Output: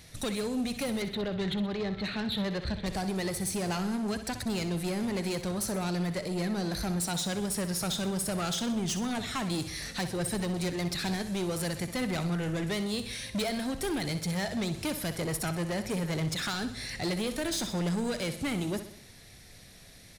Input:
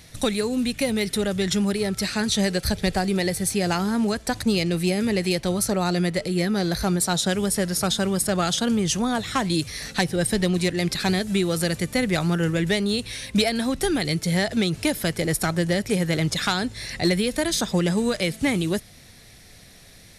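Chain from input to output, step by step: 1.02–2.86 s: steep low-pass 4.2 kHz 96 dB/octave; saturation -23 dBFS, distortion -10 dB; on a send: feedback delay 63 ms, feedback 52%, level -11 dB; on the sum: trim -4.5 dB

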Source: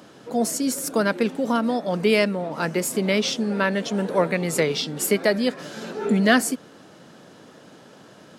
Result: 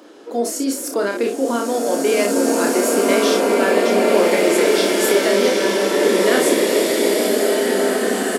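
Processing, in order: resonant low shelf 220 Hz -14 dB, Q 3; on a send: early reflections 30 ms -5 dB, 59 ms -8.5 dB; on the sum: loudness maximiser +9.5 dB; swelling reverb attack 2260 ms, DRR -4.5 dB; trim -9.5 dB

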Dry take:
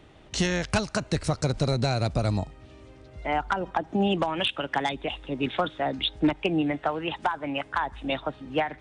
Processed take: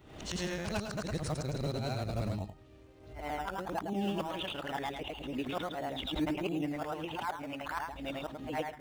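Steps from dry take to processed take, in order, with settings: short-time spectra conjugated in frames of 219 ms; in parallel at -9.5 dB: decimation with a swept rate 17×, swing 60% 1.5 Hz; on the sum: swell ahead of each attack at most 71 dB/s; trim -8.5 dB

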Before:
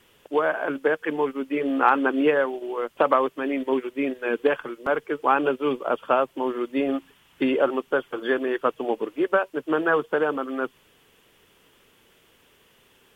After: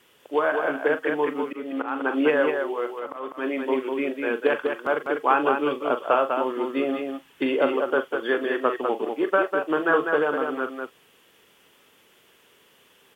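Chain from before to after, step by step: reverberation, pre-delay 25 ms, DRR 14.5 dB; 1.16–3.54 s: slow attack 328 ms; high-pass 220 Hz 6 dB/octave; loudspeakers at several distances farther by 14 m -11 dB, 68 m -5 dB

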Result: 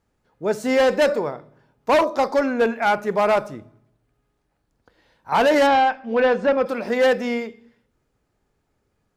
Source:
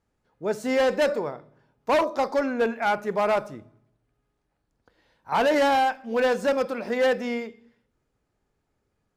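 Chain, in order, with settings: 5.66–6.65 s: low-pass 4.5 kHz -> 2.4 kHz 12 dB/octave; trim +4.5 dB

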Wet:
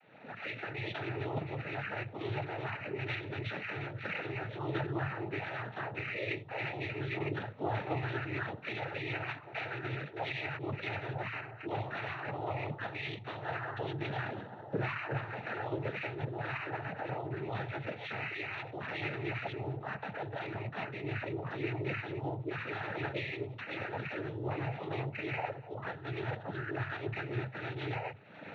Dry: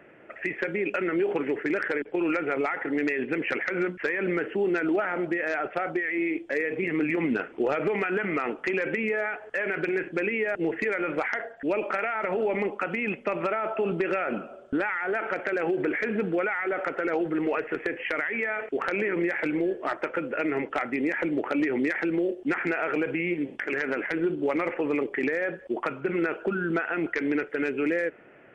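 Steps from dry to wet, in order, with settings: recorder AGC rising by 49 dB/s; chorus voices 6, 0.28 Hz, delay 23 ms, depth 4.6 ms; monotone LPC vocoder at 8 kHz 260 Hz; frequency shift +120 Hz; noise-vocoded speech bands 12; trim -7 dB

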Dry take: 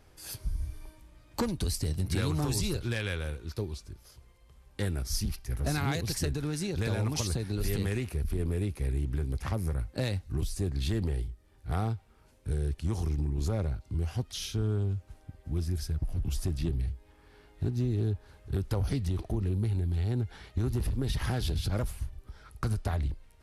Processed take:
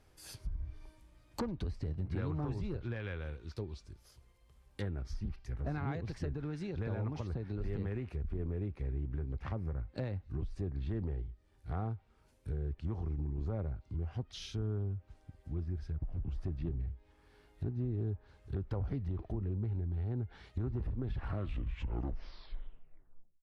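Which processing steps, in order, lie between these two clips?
tape stop on the ending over 2.49 s; low-pass that closes with the level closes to 1.5 kHz, closed at -27 dBFS; trim -6.5 dB

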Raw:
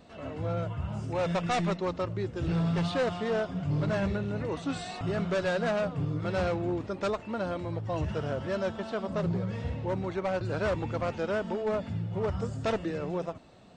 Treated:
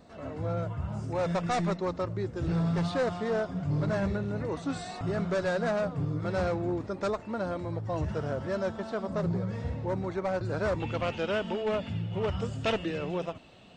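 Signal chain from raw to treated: peaking EQ 2.9 kHz -7 dB 0.61 oct, from 10.80 s +10.5 dB

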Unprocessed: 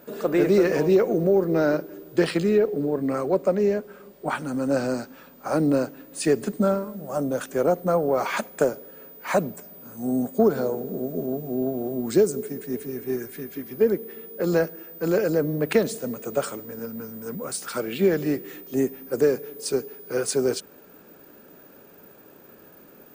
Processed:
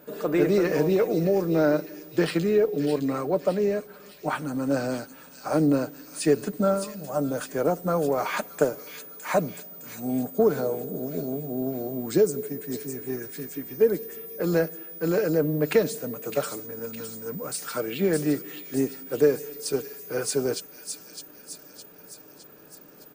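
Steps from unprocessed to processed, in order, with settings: comb 6.6 ms, depth 36%; on a send: feedback echo behind a high-pass 611 ms, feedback 53%, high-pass 3.2 kHz, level -5 dB; on the sum: trim -2 dB

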